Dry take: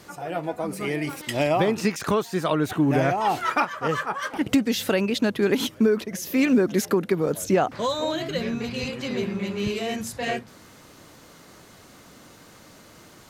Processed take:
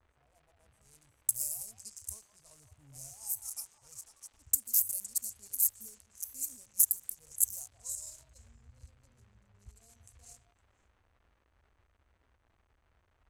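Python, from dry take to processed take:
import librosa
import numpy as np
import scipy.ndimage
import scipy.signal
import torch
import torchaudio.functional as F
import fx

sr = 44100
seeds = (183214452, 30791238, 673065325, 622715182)

p1 = fx.wiener(x, sr, points=25)
p2 = scipy.signal.sosfilt(scipy.signal.cheby2(4, 50, [160.0, 3600.0], 'bandstop', fs=sr, output='sos'), p1)
p3 = fx.riaa(p2, sr, side='recording')
p4 = p3 + fx.echo_stepped(p3, sr, ms=171, hz=860.0, octaves=1.4, feedback_pct=70, wet_db=-8, dry=0)
p5 = fx.hpss(p4, sr, part='harmonic', gain_db=6)
p6 = fx.peak_eq(p5, sr, hz=180.0, db=4.0, octaves=2.3)
p7 = 10.0 ** (-23.0 / 20.0) * np.tanh(p6 / 10.0 ** (-23.0 / 20.0))
p8 = p6 + (p7 * librosa.db_to_amplitude(-6.0))
p9 = fx.dmg_crackle(p8, sr, seeds[0], per_s=400.0, level_db=-55.0)
p10 = fx.env_lowpass(p9, sr, base_hz=1600.0, full_db=-33.0)
y = p10 * librosa.db_to_amplitude(3.0)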